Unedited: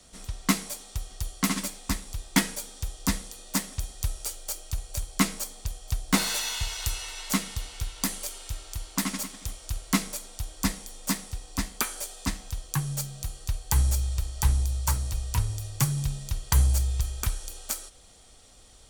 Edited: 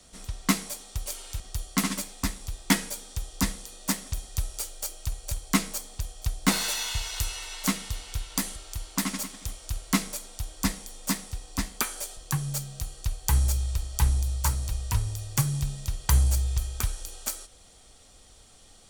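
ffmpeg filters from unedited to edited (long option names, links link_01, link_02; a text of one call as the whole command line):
ffmpeg -i in.wav -filter_complex "[0:a]asplit=5[link_01][link_02][link_03][link_04][link_05];[link_01]atrim=end=1.062[link_06];[link_02]atrim=start=8.218:end=8.562[link_07];[link_03]atrim=start=1.058:end=8.222[link_08];[link_04]atrim=start=8.558:end=12.172[link_09];[link_05]atrim=start=12.598[link_10];[link_06][link_07]acrossfade=duration=0.004:curve1=hsin:curve2=hsin[link_11];[link_11][link_08]acrossfade=duration=0.004:curve1=hsin:curve2=hsin[link_12];[link_12][link_09]acrossfade=duration=0.004:curve1=hsin:curve2=hsin[link_13];[link_13][link_10]acrossfade=duration=0.004:curve1=hsin:curve2=hsin" out.wav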